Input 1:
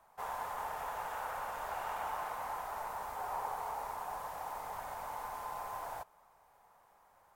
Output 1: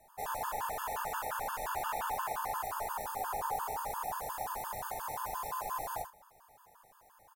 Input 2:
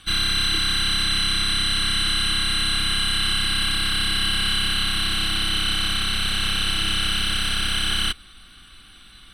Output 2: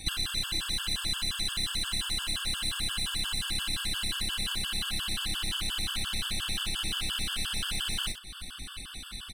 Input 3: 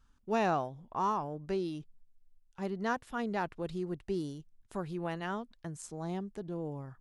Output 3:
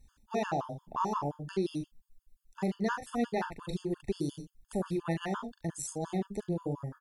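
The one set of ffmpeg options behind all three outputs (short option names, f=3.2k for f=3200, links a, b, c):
-filter_complex "[0:a]aemphasis=mode=production:type=cd,aeval=exprs='clip(val(0),-1,0.141)':c=same,lowshelf=f=460:g=3.5,acompressor=threshold=-30dB:ratio=16,asplit=2[a][b];[b]aecho=0:1:42|72:0.447|0.266[c];[a][c]amix=inputs=2:normalize=0,afftfilt=real='re*gt(sin(2*PI*5.7*pts/sr)*(1-2*mod(floor(b*sr/1024/890),2)),0)':imag='im*gt(sin(2*PI*5.7*pts/sr)*(1-2*mod(floor(b*sr/1024/890),2)),0)':win_size=1024:overlap=0.75,volume=4.5dB"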